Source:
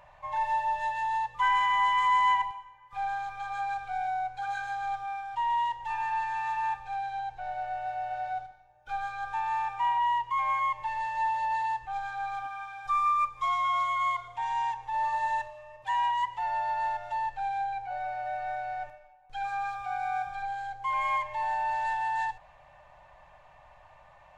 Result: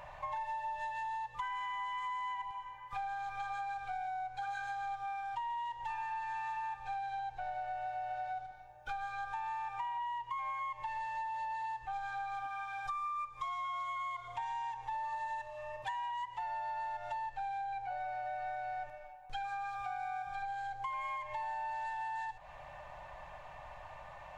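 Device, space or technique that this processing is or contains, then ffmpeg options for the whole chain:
serial compression, leveller first: -af "acompressor=threshold=-30dB:ratio=2.5,acompressor=threshold=-44dB:ratio=5,volume=5.5dB"

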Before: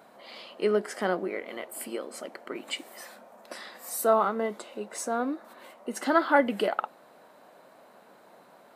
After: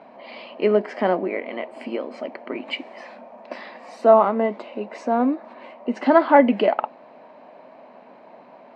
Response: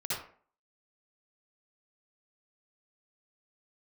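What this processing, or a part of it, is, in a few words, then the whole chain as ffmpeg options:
guitar cabinet: -af "highpass=85,equalizer=frequency=250:width_type=q:width=4:gain=8,equalizer=frequency=630:width_type=q:width=4:gain=6,equalizer=frequency=940:width_type=q:width=4:gain=5,equalizer=frequency=1400:width_type=q:width=4:gain=-7,equalizer=frequency=2400:width_type=q:width=4:gain=5,equalizer=frequency=3600:width_type=q:width=4:gain=-8,lowpass=frequency=4000:width=0.5412,lowpass=frequency=4000:width=1.3066,volume=5dB"

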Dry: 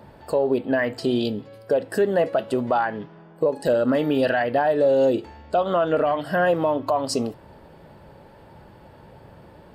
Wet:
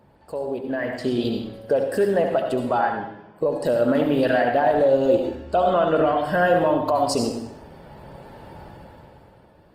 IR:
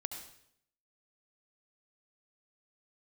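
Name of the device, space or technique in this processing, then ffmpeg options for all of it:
speakerphone in a meeting room: -filter_complex "[1:a]atrim=start_sample=2205[link_01];[0:a][link_01]afir=irnorm=-1:irlink=0,dynaudnorm=framelen=100:gausssize=21:maxgain=16dB,volume=-6.5dB" -ar 48000 -c:a libopus -b:a 20k

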